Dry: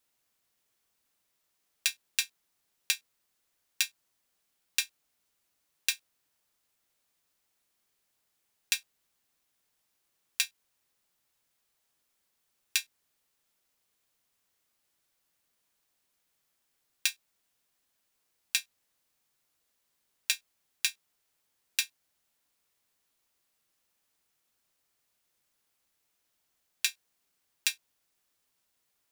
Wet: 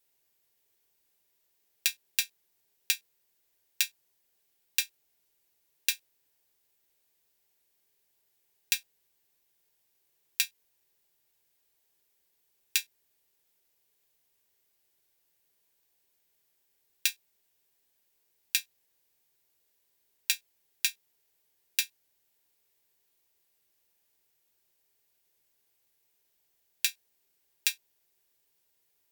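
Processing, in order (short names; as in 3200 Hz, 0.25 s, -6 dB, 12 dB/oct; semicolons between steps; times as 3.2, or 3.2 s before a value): thirty-one-band EQ 250 Hz -5 dB, 400 Hz +7 dB, 1250 Hz -8 dB, 16000 Hz +11 dB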